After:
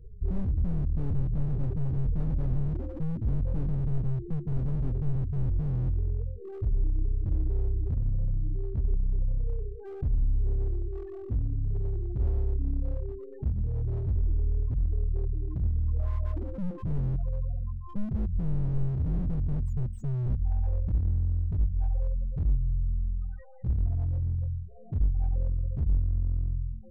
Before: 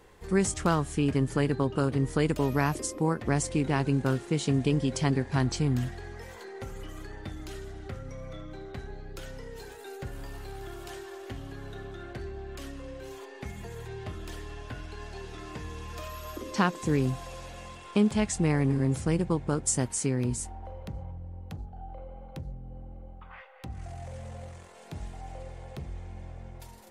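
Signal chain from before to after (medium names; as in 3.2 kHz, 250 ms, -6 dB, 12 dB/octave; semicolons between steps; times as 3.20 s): RIAA curve playback; loudest bins only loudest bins 8; slew-rate limiter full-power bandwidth 5.3 Hz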